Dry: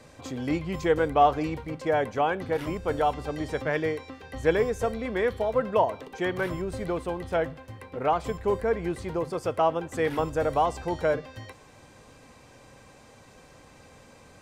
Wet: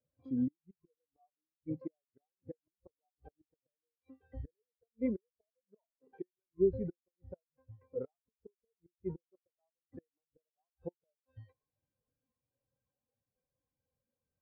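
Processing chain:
high shelf with overshoot 6,000 Hz −6.5 dB, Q 1.5
gate with flip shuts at −21 dBFS, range −32 dB
every bin expanded away from the loudest bin 2.5 to 1
level +1 dB

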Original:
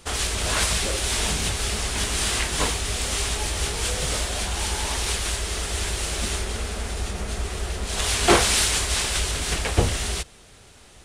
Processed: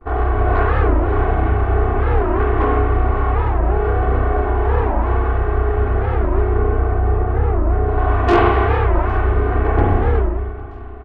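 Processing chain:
low-pass filter 1,300 Hz 24 dB per octave
noise gate with hold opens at −46 dBFS
comb filter 2.7 ms, depth 90%
soft clipping −18.5 dBFS, distortion −10 dB
repeating echo 809 ms, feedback 53%, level −22.5 dB
spring reverb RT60 1.4 s, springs 31/43 ms, chirp 80 ms, DRR −3.5 dB
wow of a warped record 45 rpm, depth 250 cents
level +6 dB

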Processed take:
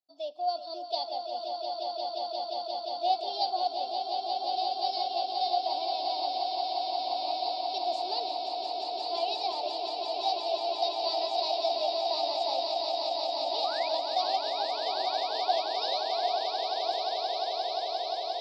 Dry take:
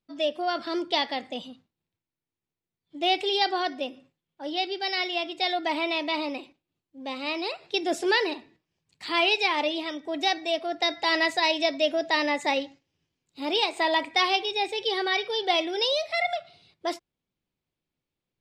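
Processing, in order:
pair of resonant band-passes 1,800 Hz, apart 2.6 octaves
sound drawn into the spectrogram rise, 0:13.64–0:13.89, 1,100–2,600 Hz −43 dBFS
echo that builds up and dies away 176 ms, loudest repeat 8, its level −7 dB

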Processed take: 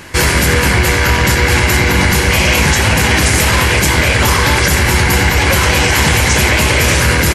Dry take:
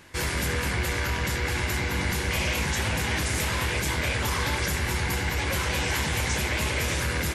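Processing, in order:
notch filter 3,600 Hz, Q 17
on a send: repeating echo 85 ms, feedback 28%, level −14.5 dB
on the sum: boost into a limiter +18.5 dB
level −1 dB

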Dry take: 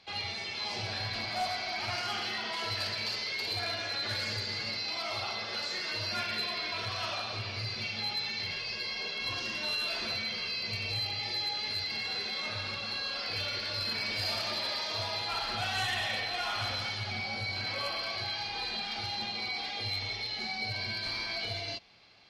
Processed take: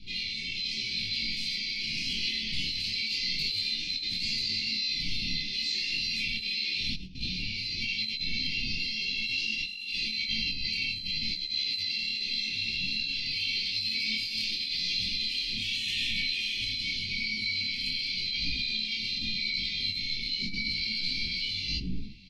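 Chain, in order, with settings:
wind on the microphone 150 Hz −39 dBFS
Chebyshev band-stop filter 360–2,300 Hz, order 4
parametric band 3,200 Hz +8 dB 2.1 octaves
comb filter 4.4 ms, depth 55%
convolution reverb RT60 0.45 s, pre-delay 7 ms, DRR 10 dB
compressor whose output falls as the input rises −27 dBFS, ratio −0.5
micro pitch shift up and down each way 30 cents

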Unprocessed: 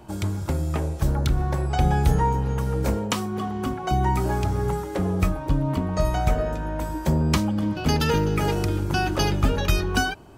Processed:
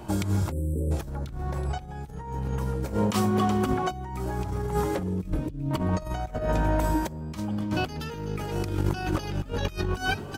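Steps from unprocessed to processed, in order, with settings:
0:05.03–0:05.71: drawn EQ curve 360 Hz 0 dB, 1,000 Hz −21 dB, 2,500 Hz −5 dB
echo with shifted repeats 374 ms, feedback 43%, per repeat +52 Hz, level −20 dB
0:00.52–0:00.91: time-frequency box erased 560–7,600 Hz
compressor whose output falls as the input rises −27 dBFS, ratio −0.5

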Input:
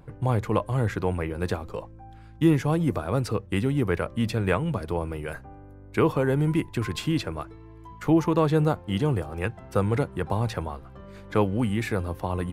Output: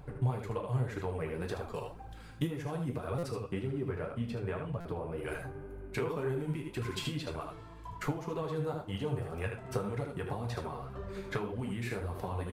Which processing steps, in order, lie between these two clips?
0:03.43–0:05.18: high-shelf EQ 2,300 Hz −10.5 dB
ambience of single reflections 36 ms −16 dB, 76 ms −7 dB
downward compressor 6 to 1, threshold −34 dBFS, peak gain reduction 18.5 dB
0:01.74–0:02.47: high-shelf EQ 4,800 Hz +9.5 dB
convolution reverb, pre-delay 3 ms, DRR 4.5 dB
flanger 1.9 Hz, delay 0.9 ms, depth 7.9 ms, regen +32%
buffer that repeats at 0:03.18/0:04.80, samples 256, times 8
level +3.5 dB

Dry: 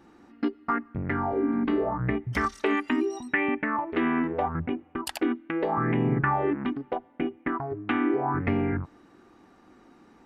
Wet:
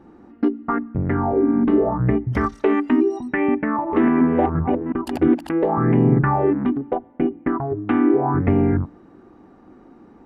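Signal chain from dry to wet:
0:03.50–0:05.53: delay that plays each chunk backwards 356 ms, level −5.5 dB
tilt shelving filter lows +9 dB, about 1,500 Hz
hum removal 57.28 Hz, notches 6
level +1 dB

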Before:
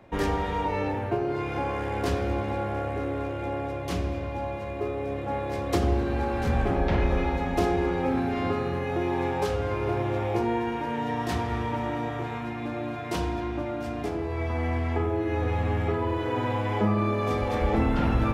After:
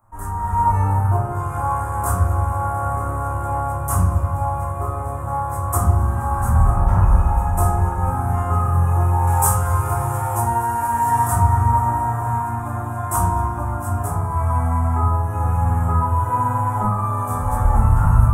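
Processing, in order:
0:09.27–0:11.27: high-shelf EQ 2,000 Hz +11.5 dB
automatic gain control gain up to 16 dB
drawn EQ curve 110 Hz 0 dB, 200 Hz −8 dB, 290 Hz −20 dB, 510 Hz −18 dB, 830 Hz −2 dB, 1,200 Hz +3 dB, 2,200 Hz −22 dB, 4,200 Hz −30 dB, 8,300 Hz +11 dB
rectangular room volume 210 cubic metres, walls furnished, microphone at 2.8 metres
level −6.5 dB

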